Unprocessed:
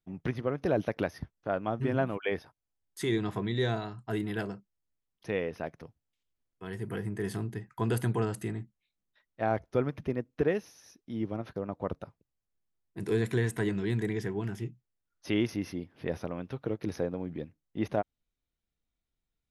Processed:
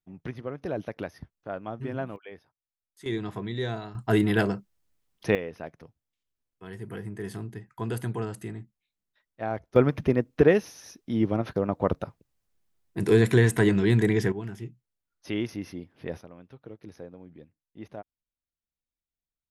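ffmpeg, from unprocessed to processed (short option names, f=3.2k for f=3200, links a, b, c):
-af "asetnsamples=n=441:p=0,asendcmd='2.16 volume volume -13dB;3.06 volume volume -1.5dB;3.95 volume volume 10.5dB;5.35 volume volume -2dB;9.76 volume volume 9dB;14.32 volume volume -1.5dB;16.21 volume volume -11dB',volume=-4dB"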